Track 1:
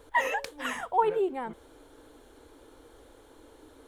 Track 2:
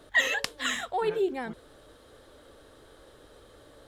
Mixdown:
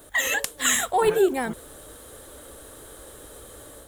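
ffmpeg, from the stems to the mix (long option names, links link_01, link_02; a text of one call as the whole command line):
ffmpeg -i stem1.wav -i stem2.wav -filter_complex "[0:a]aeval=exprs='val(0)*sin(2*PI*670*n/s+670*0.85/2.5*sin(2*PI*2.5*n/s))':channel_layout=same,volume=-13.5dB[link_01];[1:a]alimiter=limit=-17dB:level=0:latency=1:release=340,aexciter=amount=3.4:drive=8.6:freq=6800,volume=2.5dB[link_02];[link_01][link_02]amix=inputs=2:normalize=0,dynaudnorm=framelen=180:gausssize=3:maxgain=5dB,equalizer=frequency=61:width=4.8:gain=5.5" out.wav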